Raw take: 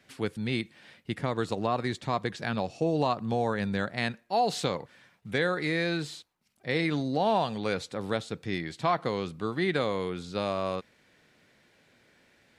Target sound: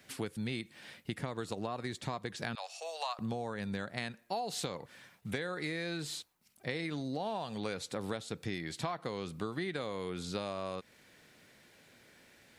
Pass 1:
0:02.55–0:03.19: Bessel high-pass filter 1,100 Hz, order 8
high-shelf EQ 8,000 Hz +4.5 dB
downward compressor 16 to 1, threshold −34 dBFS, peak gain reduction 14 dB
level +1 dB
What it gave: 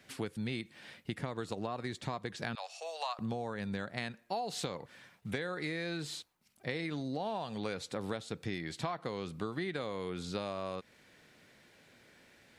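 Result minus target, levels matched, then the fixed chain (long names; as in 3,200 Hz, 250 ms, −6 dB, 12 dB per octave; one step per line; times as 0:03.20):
8,000 Hz band −2.5 dB
0:02.55–0:03.19: Bessel high-pass filter 1,100 Hz, order 8
high-shelf EQ 8,000 Hz +11.5 dB
downward compressor 16 to 1, threshold −34 dBFS, peak gain reduction 14 dB
level +1 dB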